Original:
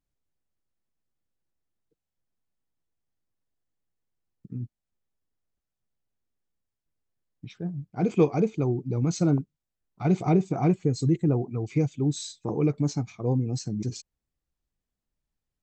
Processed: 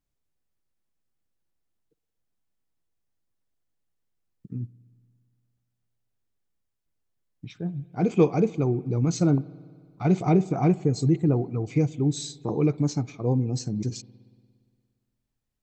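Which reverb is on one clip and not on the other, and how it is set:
spring reverb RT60 2 s, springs 58 ms, chirp 40 ms, DRR 19.5 dB
level +1.5 dB

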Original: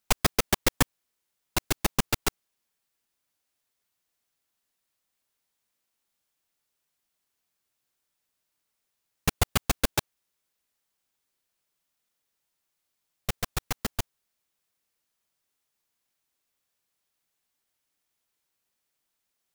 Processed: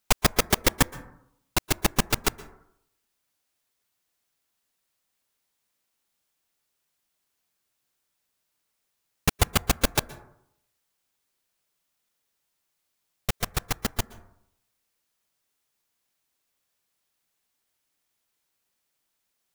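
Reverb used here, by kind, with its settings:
dense smooth reverb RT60 0.74 s, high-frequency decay 0.3×, pre-delay 110 ms, DRR 17.5 dB
level +2.5 dB

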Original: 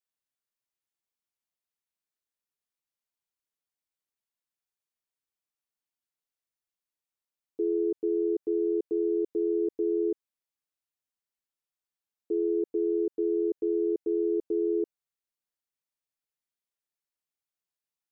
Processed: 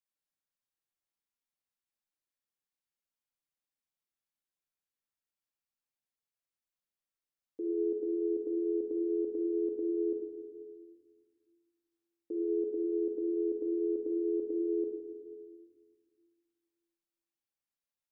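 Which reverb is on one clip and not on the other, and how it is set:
rectangular room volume 1,500 cubic metres, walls mixed, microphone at 2.2 metres
level −7.5 dB

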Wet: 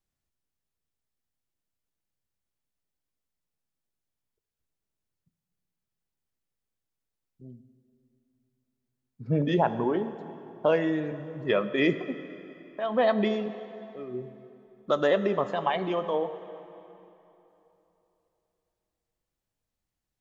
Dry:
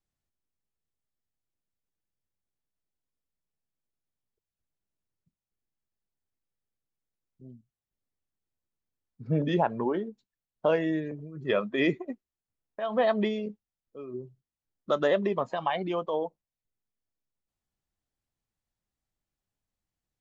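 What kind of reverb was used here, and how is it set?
dense smooth reverb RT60 3.2 s, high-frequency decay 0.8×, DRR 11 dB
level +1.5 dB

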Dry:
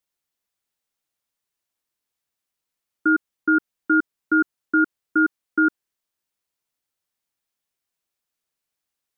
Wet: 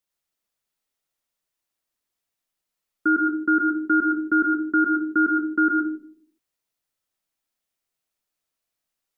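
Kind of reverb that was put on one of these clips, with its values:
comb and all-pass reverb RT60 0.57 s, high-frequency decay 0.3×, pre-delay 65 ms, DRR 2.5 dB
level −1.5 dB

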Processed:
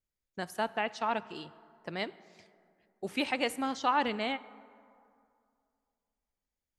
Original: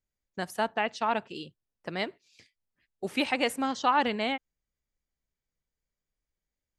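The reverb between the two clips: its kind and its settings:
dense smooth reverb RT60 2.4 s, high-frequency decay 0.45×, DRR 17 dB
level −3.5 dB

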